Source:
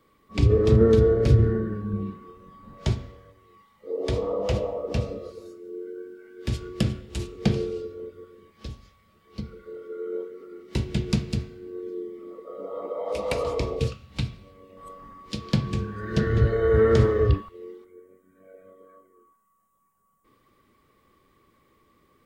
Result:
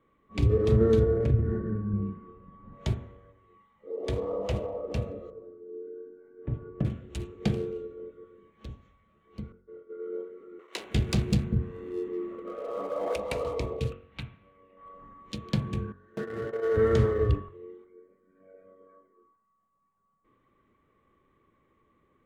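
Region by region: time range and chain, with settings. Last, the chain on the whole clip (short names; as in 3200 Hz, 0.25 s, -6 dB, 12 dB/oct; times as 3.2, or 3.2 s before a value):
1.03–2.73 tone controls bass +5 dB, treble -12 dB + compressor 4:1, threshold -15 dBFS + de-hum 110.6 Hz, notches 29
5.3–6.85 LPF 1000 Hz + comb 6.9 ms, depth 45%
9.52–10 expander -36 dBFS + air absorption 220 m
10.59–13.16 sample leveller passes 2 + notch 910 Hz, Q 23 + bands offset in time highs, lows 0.19 s, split 440 Hz
13.92–14.94 LPF 2200 Hz + tilt shelf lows -8 dB, about 1100 Hz
15.92–16.77 median filter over 15 samples + gate -25 dBFS, range -18 dB + HPF 320 Hz
whole clip: Wiener smoothing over 9 samples; de-hum 46.05 Hz, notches 39; dynamic EQ 5100 Hz, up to -4 dB, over -56 dBFS, Q 4.5; gain -4 dB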